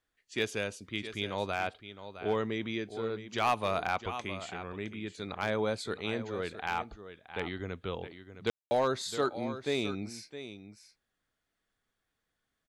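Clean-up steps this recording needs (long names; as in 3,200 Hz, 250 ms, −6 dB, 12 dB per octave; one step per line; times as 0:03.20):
clipped peaks rebuilt −20 dBFS
ambience match 0:08.50–0:08.71
echo removal 663 ms −12 dB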